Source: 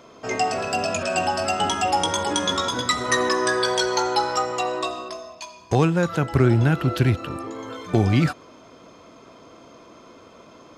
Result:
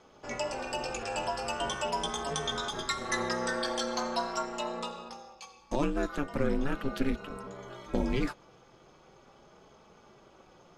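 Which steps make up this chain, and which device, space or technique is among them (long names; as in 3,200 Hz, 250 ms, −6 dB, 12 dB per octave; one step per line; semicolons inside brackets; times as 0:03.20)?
alien voice (ring modulation 140 Hz; flanger 0.41 Hz, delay 4.5 ms, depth 1.6 ms, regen −50%)
level −3.5 dB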